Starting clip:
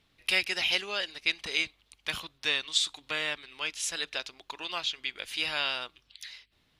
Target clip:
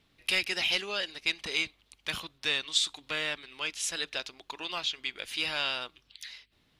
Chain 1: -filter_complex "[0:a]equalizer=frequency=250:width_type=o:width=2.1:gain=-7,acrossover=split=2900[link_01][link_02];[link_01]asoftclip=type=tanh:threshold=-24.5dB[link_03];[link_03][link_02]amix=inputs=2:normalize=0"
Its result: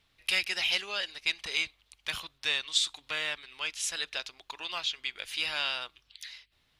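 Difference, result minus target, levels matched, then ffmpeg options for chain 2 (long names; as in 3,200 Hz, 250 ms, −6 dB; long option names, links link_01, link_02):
250 Hz band −8.0 dB
-filter_complex "[0:a]equalizer=frequency=250:width_type=o:width=2.1:gain=3,acrossover=split=2900[link_01][link_02];[link_01]asoftclip=type=tanh:threshold=-24.5dB[link_03];[link_03][link_02]amix=inputs=2:normalize=0"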